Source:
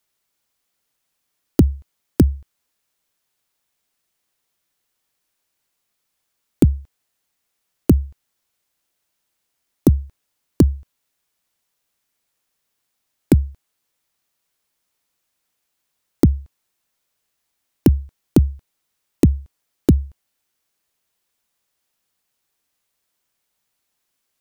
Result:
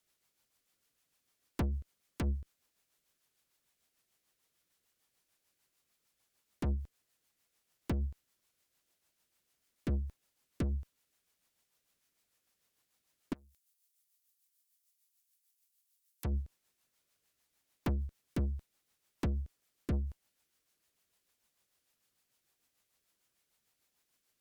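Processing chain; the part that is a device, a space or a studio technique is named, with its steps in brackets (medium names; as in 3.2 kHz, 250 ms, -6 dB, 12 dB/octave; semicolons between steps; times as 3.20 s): overdriven rotary cabinet (valve stage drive 29 dB, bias 0.25; rotary cabinet horn 6.7 Hz); 13.33–16.25 s: pre-emphasis filter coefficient 0.97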